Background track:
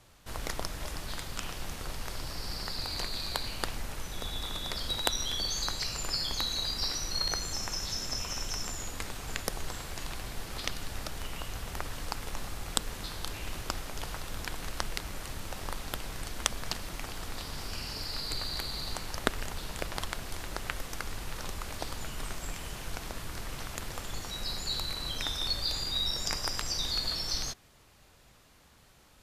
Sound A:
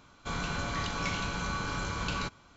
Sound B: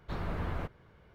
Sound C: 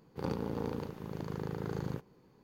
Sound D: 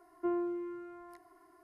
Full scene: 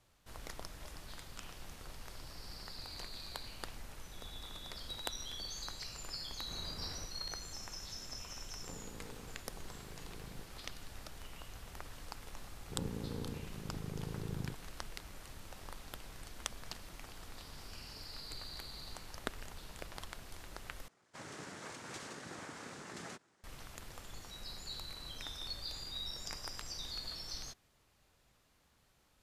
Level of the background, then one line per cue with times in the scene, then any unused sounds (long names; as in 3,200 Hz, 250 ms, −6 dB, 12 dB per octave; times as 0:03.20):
background track −11.5 dB
0:06.39: mix in B −13.5 dB
0:08.45: mix in C −16.5 dB
0:12.54: mix in C −13 dB + spectral tilt −3.5 dB per octave
0:20.88: overwrite with A −13.5 dB + cochlear-implant simulation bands 3
not used: D